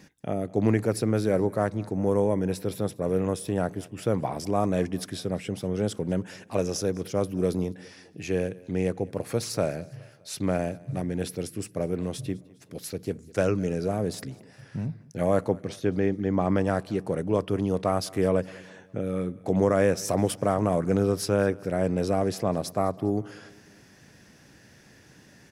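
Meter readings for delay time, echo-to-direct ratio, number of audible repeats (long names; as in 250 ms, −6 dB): 204 ms, −21.5 dB, 3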